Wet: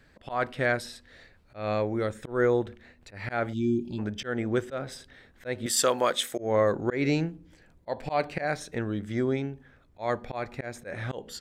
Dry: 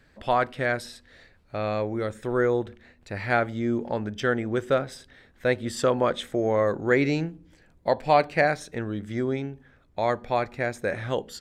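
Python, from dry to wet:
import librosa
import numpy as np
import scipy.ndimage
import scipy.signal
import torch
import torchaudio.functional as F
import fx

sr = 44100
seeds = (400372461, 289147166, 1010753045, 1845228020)

y = fx.spec_box(x, sr, start_s=3.53, length_s=0.46, low_hz=390.0, high_hz=2300.0, gain_db=-29)
y = fx.riaa(y, sr, side='recording', at=(5.66, 6.38))
y = fx.auto_swell(y, sr, attack_ms=178.0)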